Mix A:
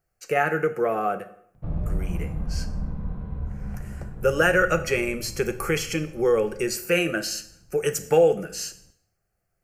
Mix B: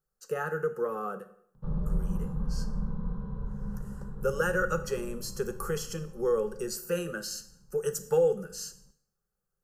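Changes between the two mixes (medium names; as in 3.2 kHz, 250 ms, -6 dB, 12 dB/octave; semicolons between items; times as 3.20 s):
speech -5.5 dB; master: add static phaser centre 450 Hz, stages 8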